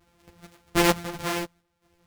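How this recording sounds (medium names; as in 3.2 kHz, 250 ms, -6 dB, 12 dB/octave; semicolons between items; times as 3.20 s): a buzz of ramps at a fixed pitch in blocks of 256 samples; random-step tremolo 4.4 Hz, depth 85%; a shimmering, thickened sound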